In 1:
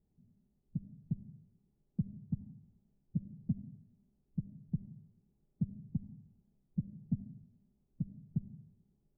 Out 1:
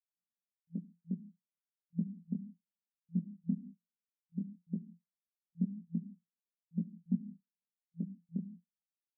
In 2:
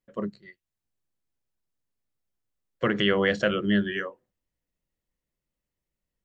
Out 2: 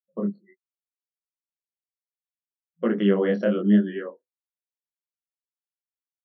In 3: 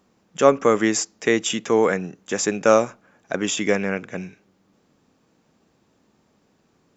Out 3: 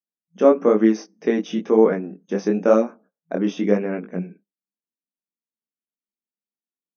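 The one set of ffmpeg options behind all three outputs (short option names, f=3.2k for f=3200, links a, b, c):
-af "agate=range=-13dB:threshold=-47dB:ratio=16:detection=peak,afftdn=nr=33:nf=-48,afftfilt=real='re*between(b*sr/4096,170,6400)':imag='im*between(b*sr/4096,170,6400)':win_size=4096:overlap=0.75,tiltshelf=f=970:g=9.5,flanger=delay=17.5:depth=7.8:speed=1,volume=-1dB"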